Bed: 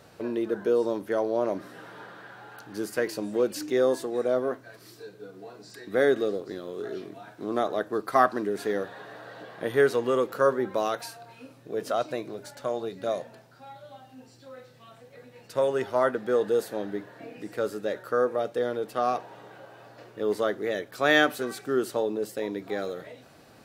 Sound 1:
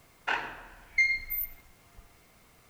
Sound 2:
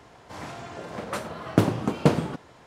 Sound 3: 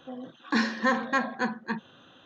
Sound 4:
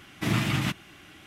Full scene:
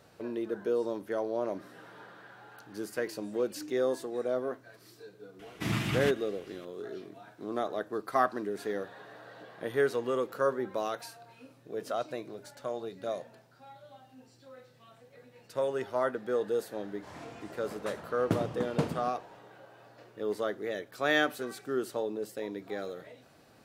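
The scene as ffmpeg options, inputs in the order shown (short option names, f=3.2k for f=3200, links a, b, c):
-filter_complex "[0:a]volume=-6dB[a];[4:a]atrim=end=1.26,asetpts=PTS-STARTPTS,volume=-5.5dB,afade=t=in:d=0.004:c=hsin,afade=t=out:st=1.256:d=0.004:c=hsin,adelay=5390[b];[2:a]atrim=end=2.66,asetpts=PTS-STARTPTS,volume=-10dB,afade=t=in:d=0.004:c=hsin,afade=t=out:st=2.656:d=0.004:c=hsin,adelay=16730[c];[a][b][c]amix=inputs=3:normalize=0"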